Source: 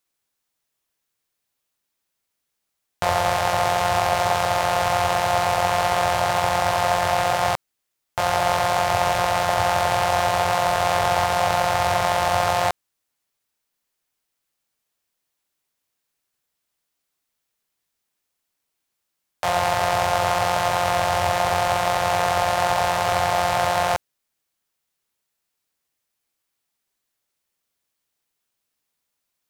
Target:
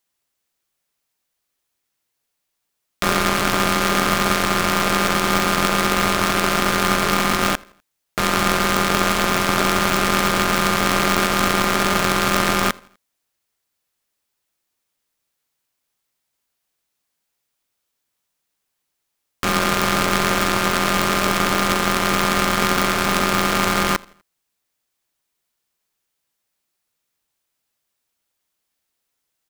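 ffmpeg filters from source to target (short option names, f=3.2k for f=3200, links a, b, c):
-filter_complex "[0:a]asplit=2[a][b];[b]adelay=83,lowpass=f=4.3k:p=1,volume=-23.5dB,asplit=2[c][d];[d]adelay=83,lowpass=f=4.3k:p=1,volume=0.44,asplit=2[e][f];[f]adelay=83,lowpass=f=4.3k:p=1,volume=0.44[g];[a][c][e][g]amix=inputs=4:normalize=0,aeval=exprs='val(0)*sgn(sin(2*PI*510*n/s))':c=same,volume=2dB"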